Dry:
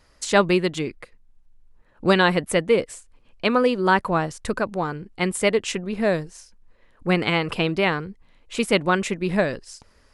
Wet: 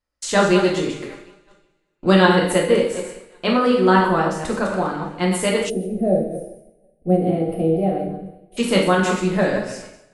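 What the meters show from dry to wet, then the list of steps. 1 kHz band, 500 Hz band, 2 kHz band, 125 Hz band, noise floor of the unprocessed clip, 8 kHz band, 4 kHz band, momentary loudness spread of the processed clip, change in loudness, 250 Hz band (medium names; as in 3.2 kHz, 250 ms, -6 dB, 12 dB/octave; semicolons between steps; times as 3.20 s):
+3.0 dB, +3.5 dB, +0.5 dB, +4.5 dB, -58 dBFS, +2.5 dB, +1.0 dB, 16 LU, +3.0 dB, +5.0 dB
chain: chunks repeated in reverse 120 ms, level -6.5 dB; thinning echo 369 ms, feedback 62%, high-pass 190 Hz, level -23.5 dB; gate -42 dBFS, range -26 dB; two-slope reverb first 0.61 s, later 1.8 s, from -24 dB, DRR -2 dB; time-frequency box 5.70–8.57 s, 800–8700 Hz -26 dB; dynamic bell 2.3 kHz, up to -6 dB, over -38 dBFS, Q 3.7; trim -1.5 dB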